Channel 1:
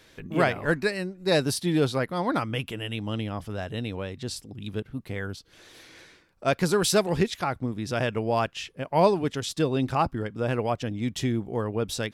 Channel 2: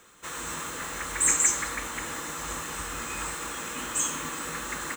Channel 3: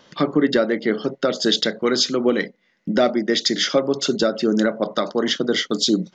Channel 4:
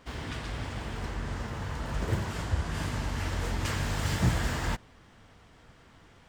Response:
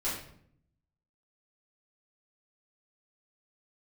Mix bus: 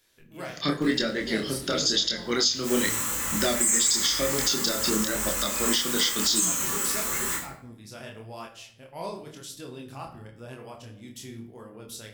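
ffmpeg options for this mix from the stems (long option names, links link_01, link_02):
-filter_complex "[0:a]volume=-15dB,asplit=3[link_01][link_02][link_03];[link_02]volume=-8dB[link_04];[1:a]adelay=2400,volume=0.5dB,asplit=2[link_05][link_06];[link_06]volume=-4dB[link_07];[2:a]equalizer=frequency=570:width=0.39:gain=-9,adelay=450,volume=1.5dB,asplit=2[link_08][link_09];[link_09]volume=-14dB[link_10];[3:a]acompressor=threshold=-40dB:ratio=6,adelay=750,volume=-5.5dB,asplit=2[link_11][link_12];[link_12]volume=-7dB[link_13];[link_03]apad=whole_len=324649[link_14];[link_05][link_14]sidechaincompress=threshold=-55dB:ratio=8:attack=16:release=1480[link_15];[4:a]atrim=start_sample=2205[link_16];[link_04][link_07][link_10][link_13]amix=inputs=4:normalize=0[link_17];[link_17][link_16]afir=irnorm=-1:irlink=0[link_18];[link_01][link_15][link_08][link_11][link_18]amix=inputs=5:normalize=0,aemphasis=mode=production:type=75fm,flanger=delay=22.5:depth=7.5:speed=0.94,alimiter=limit=-12.5dB:level=0:latency=1:release=240"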